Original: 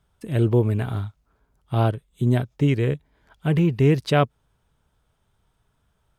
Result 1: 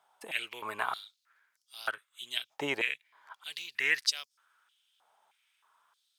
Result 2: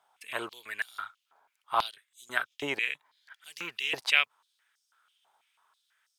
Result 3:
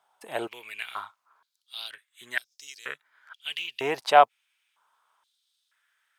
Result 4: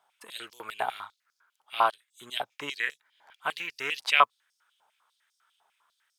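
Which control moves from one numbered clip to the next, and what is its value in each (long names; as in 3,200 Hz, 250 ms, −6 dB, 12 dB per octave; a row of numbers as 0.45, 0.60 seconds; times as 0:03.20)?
high-pass on a step sequencer, speed: 3.2, 6.1, 2.1, 10 Hertz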